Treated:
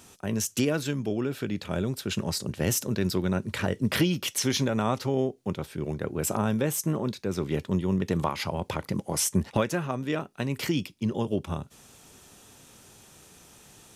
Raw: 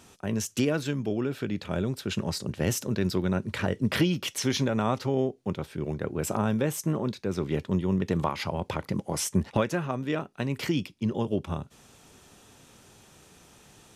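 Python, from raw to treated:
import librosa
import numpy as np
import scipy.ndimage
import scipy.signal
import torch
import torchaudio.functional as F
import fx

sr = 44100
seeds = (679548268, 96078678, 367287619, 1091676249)

y = fx.high_shelf(x, sr, hz=6900.0, db=8.0)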